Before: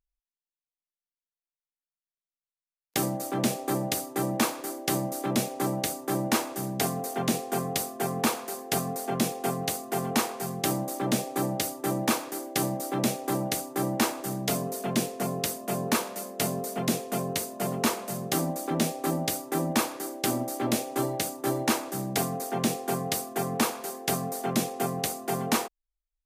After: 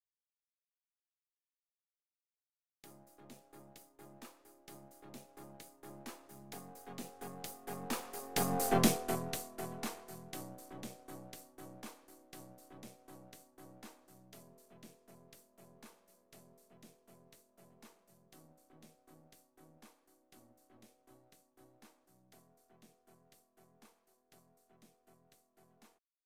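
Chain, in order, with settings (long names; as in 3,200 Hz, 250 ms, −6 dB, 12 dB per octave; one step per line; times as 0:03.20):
gain on one half-wave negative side −7 dB
source passing by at 0:08.71, 14 m/s, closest 2.3 metres
level +3.5 dB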